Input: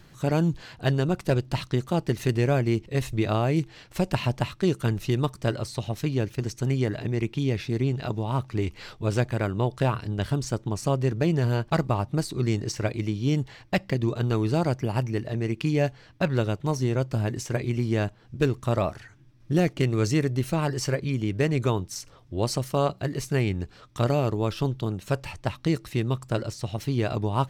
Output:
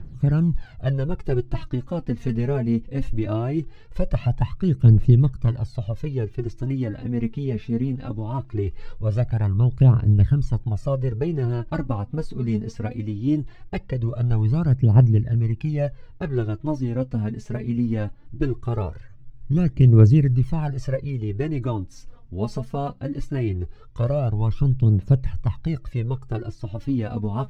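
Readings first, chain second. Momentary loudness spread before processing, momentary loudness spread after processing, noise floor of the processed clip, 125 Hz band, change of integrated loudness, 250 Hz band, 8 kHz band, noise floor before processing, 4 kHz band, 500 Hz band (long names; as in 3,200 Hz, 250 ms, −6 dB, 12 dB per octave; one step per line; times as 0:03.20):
6 LU, 12 LU, −43 dBFS, +6.5 dB, +4.0 dB, +2.5 dB, below −10 dB, −53 dBFS, below −10 dB, −2.0 dB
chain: RIAA equalisation playback
phase shifter 0.2 Hz, delay 4.8 ms, feedback 69%
level −7.5 dB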